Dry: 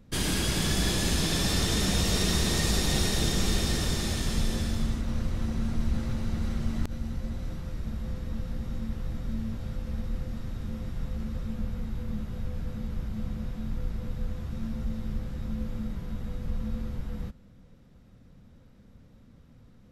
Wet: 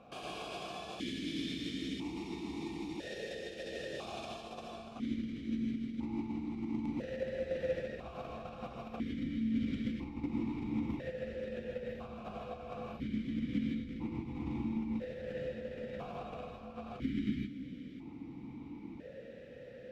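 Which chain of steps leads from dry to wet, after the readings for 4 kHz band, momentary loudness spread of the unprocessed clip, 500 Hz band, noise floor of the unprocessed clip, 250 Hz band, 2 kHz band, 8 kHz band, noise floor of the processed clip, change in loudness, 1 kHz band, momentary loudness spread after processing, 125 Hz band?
-15.5 dB, 11 LU, -1.5 dB, -55 dBFS, -3.5 dB, -10.5 dB, under -25 dB, -50 dBFS, -9.0 dB, -5.5 dB, 11 LU, -14.5 dB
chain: spectral delete 16.94–17.5, 450–1200 Hz; dynamic EQ 1900 Hz, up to -4 dB, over -49 dBFS, Q 1.2; negative-ratio compressor -37 dBFS, ratio -1; non-linear reverb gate 0.18 s rising, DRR -1 dB; vowel sequencer 1 Hz; gain +13 dB

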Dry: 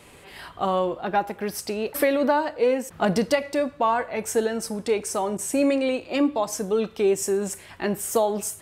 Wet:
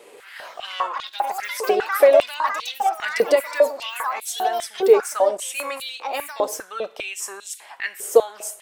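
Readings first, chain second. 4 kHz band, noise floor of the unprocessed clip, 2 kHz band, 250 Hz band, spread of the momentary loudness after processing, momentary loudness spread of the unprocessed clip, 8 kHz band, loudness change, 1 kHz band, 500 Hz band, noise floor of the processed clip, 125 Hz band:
+5.0 dB, -48 dBFS, +4.5 dB, -12.0 dB, 15 LU, 7 LU, 0.0 dB, +2.5 dB, +3.0 dB, +3.5 dB, -47 dBFS, under -20 dB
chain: echoes that change speed 0.177 s, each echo +5 st, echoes 3, each echo -6 dB; stepped high-pass 5 Hz 440–3600 Hz; gain -1 dB

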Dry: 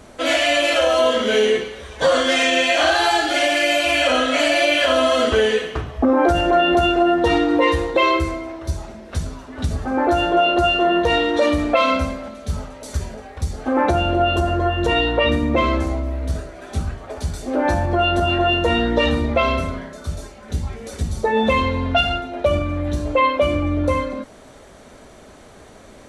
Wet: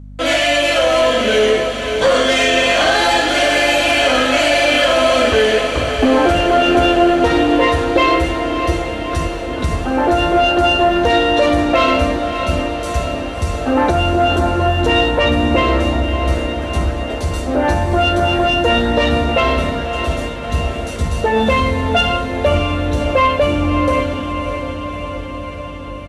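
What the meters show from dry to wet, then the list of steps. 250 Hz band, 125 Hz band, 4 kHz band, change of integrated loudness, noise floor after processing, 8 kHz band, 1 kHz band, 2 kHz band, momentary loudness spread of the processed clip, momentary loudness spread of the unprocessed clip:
+4.0 dB, +4.5 dB, +4.0 dB, +3.5 dB, -25 dBFS, +4.5 dB, +4.0 dB, +4.0 dB, 9 LU, 13 LU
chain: gate with hold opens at -31 dBFS; sample leveller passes 1; diffused feedback echo 0.61 s, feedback 69%, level -8 dB; hum 50 Hz, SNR 19 dB; downsampling 32000 Hz

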